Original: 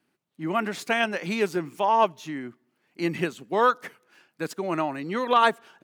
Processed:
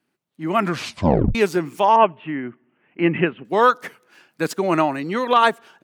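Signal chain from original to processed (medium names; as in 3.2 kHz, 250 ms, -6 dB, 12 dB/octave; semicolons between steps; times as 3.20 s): 0.57 s: tape stop 0.78 s; 1.96–3.45 s: Chebyshev low-pass 2.9 kHz, order 5; level rider gain up to 11.5 dB; trim -1 dB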